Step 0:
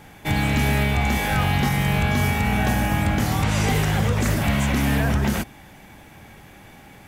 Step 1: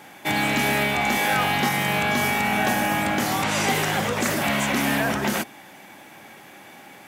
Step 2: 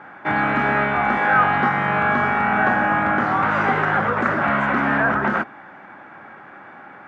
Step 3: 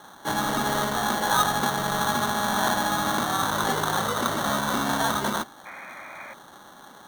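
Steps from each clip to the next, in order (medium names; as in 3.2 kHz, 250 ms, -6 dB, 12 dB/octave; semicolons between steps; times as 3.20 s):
high-pass 280 Hz 12 dB/octave; band-stop 450 Hz, Q 12; trim +3 dB
resonant low-pass 1.4 kHz, resonance Q 3.5; trim +1 dB
sample-rate reducer 2.5 kHz, jitter 0%; painted sound noise, 5.65–6.34 s, 520–2500 Hz -35 dBFS; trim -6 dB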